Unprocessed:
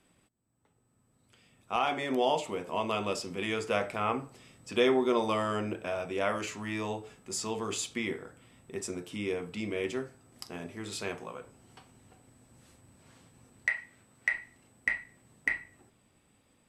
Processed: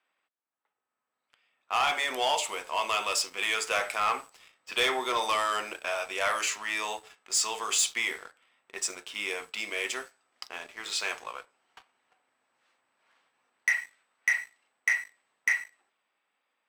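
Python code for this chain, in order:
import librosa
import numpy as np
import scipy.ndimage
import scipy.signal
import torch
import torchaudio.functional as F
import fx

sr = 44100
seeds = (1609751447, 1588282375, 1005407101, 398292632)

p1 = fx.env_lowpass(x, sr, base_hz=2300.0, full_db=-29.0)
p2 = scipy.signal.sosfilt(scipy.signal.butter(2, 970.0, 'highpass', fs=sr, output='sos'), p1)
p3 = 10.0 ** (-31.5 / 20.0) * np.tanh(p2 / 10.0 ** (-31.5 / 20.0))
p4 = p2 + (p3 * librosa.db_to_amplitude(-4.5))
p5 = fx.high_shelf(p4, sr, hz=5700.0, db=7.5)
p6 = fx.leveller(p5, sr, passes=2)
y = p6 * librosa.db_to_amplitude(-3.0)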